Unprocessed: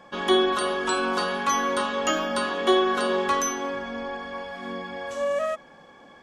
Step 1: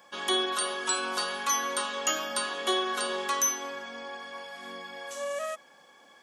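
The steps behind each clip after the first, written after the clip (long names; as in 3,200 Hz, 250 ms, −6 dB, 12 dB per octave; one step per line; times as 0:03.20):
RIAA equalisation recording
level −6.5 dB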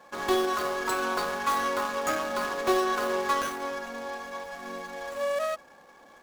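running median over 15 samples
level +5.5 dB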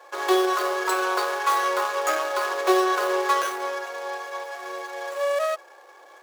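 elliptic high-pass filter 350 Hz, stop band 40 dB
level +5 dB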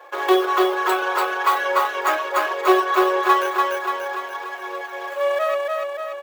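reverb reduction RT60 1.6 s
flat-topped bell 7,000 Hz −9 dB
on a send: repeating echo 291 ms, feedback 59%, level −3 dB
on the sum: level +4.5 dB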